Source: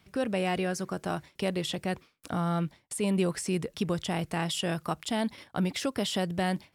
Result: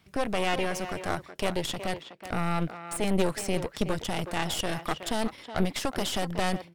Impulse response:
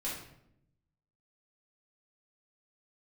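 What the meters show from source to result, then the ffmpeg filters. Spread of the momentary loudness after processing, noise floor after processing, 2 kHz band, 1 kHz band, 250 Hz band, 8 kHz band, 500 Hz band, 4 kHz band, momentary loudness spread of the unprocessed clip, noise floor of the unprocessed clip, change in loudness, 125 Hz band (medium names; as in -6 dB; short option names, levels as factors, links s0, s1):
5 LU, -54 dBFS, +3.0 dB, +3.0 dB, -1.5 dB, +1.5 dB, +1.0 dB, +1.5 dB, 5 LU, -68 dBFS, +0.5 dB, -1.5 dB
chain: -filter_complex "[0:a]aeval=exprs='0.158*(cos(1*acos(clip(val(0)/0.158,-1,1)))-cos(1*PI/2))+0.0562*(cos(4*acos(clip(val(0)/0.158,-1,1)))-cos(4*PI/2))':c=same,asplit=2[s0][s1];[s1]adelay=370,highpass=300,lowpass=3400,asoftclip=type=hard:threshold=0.075,volume=0.355[s2];[s0][s2]amix=inputs=2:normalize=0"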